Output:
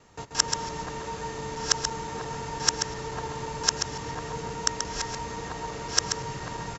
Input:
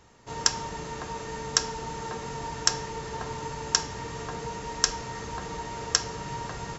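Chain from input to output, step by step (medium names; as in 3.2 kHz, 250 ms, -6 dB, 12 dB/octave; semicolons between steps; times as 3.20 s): time reversed locally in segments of 173 ms; delay 133 ms -6.5 dB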